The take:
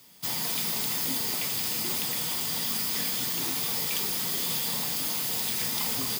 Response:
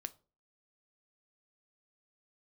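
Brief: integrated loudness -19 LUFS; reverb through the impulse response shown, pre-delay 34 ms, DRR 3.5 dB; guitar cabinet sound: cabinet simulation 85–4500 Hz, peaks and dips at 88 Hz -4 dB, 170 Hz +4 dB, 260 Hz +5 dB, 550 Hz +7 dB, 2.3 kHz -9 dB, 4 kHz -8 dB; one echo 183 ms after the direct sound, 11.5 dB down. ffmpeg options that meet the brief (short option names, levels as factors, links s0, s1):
-filter_complex "[0:a]aecho=1:1:183:0.266,asplit=2[s0][s1];[1:a]atrim=start_sample=2205,adelay=34[s2];[s1][s2]afir=irnorm=-1:irlink=0,volume=0.944[s3];[s0][s3]amix=inputs=2:normalize=0,highpass=85,equalizer=f=88:t=q:w=4:g=-4,equalizer=f=170:t=q:w=4:g=4,equalizer=f=260:t=q:w=4:g=5,equalizer=f=550:t=q:w=4:g=7,equalizer=f=2300:t=q:w=4:g=-9,equalizer=f=4000:t=q:w=4:g=-8,lowpass=f=4500:w=0.5412,lowpass=f=4500:w=1.3066,volume=5.62"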